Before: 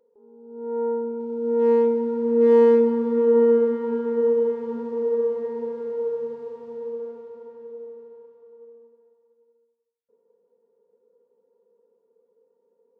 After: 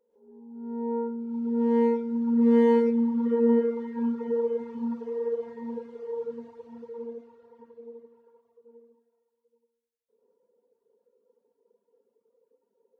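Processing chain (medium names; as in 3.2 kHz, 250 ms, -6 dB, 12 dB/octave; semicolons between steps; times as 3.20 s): gated-style reverb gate 170 ms rising, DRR -7.5 dB; reverb removal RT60 1.3 s; trim -8 dB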